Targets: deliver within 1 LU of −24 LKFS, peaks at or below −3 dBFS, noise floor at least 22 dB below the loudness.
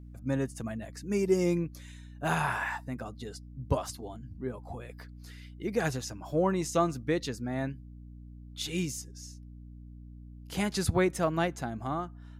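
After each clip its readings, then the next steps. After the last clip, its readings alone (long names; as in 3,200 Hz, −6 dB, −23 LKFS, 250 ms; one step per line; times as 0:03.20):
mains hum 60 Hz; hum harmonics up to 300 Hz; level of the hum −45 dBFS; integrated loudness −32.0 LKFS; sample peak −14.5 dBFS; target loudness −24.0 LKFS
→ hum removal 60 Hz, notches 5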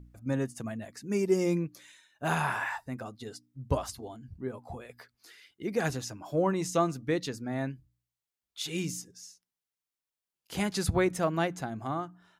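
mains hum none found; integrated loudness −32.0 LKFS; sample peak −14.5 dBFS; target loudness −24.0 LKFS
→ level +8 dB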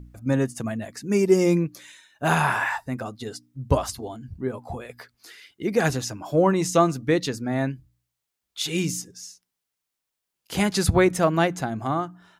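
integrated loudness −24.0 LKFS; sample peak −6.5 dBFS; background noise floor −83 dBFS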